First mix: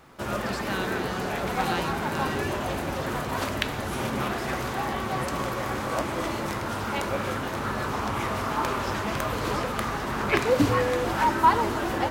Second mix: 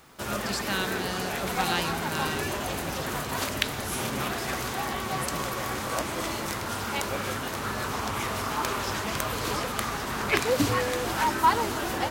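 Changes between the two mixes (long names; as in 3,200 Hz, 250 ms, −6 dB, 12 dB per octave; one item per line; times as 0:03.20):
background: send off
master: add high-shelf EQ 3,000 Hz +10.5 dB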